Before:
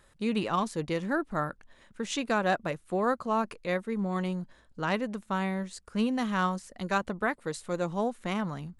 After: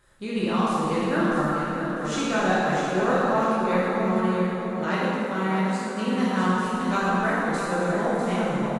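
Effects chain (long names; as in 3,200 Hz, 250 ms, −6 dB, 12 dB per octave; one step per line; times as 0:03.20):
0:04.12–0:06.44: high-pass filter 180 Hz
repeating echo 650 ms, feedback 32%, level −7 dB
dense smooth reverb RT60 3.1 s, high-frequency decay 0.6×, DRR −8.5 dB
feedback echo with a swinging delay time 334 ms, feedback 32%, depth 154 cents, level −21 dB
level −3.5 dB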